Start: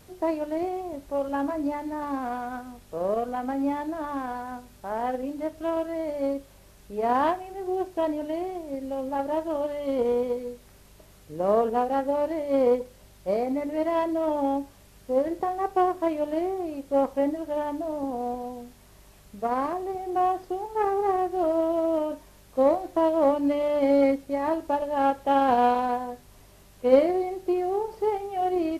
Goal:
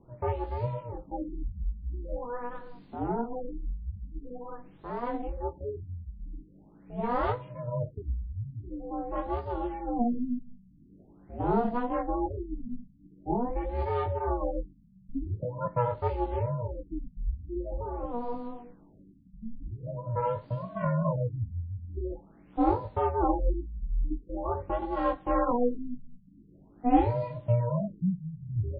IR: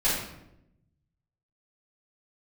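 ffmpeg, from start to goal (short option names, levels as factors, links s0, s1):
-filter_complex "[0:a]aeval=exprs='val(0)*sin(2*PI*240*n/s)':c=same,acrossover=split=270[s0][s1];[s0]acontrast=63[s2];[s2][s1]amix=inputs=2:normalize=0,flanger=delay=16.5:depth=3.4:speed=1.6,afftfilt=real='re*lt(b*sr/1024,220*pow(5000/220,0.5+0.5*sin(2*PI*0.45*pts/sr)))':imag='im*lt(b*sr/1024,220*pow(5000/220,0.5+0.5*sin(2*PI*0.45*pts/sr)))':win_size=1024:overlap=0.75"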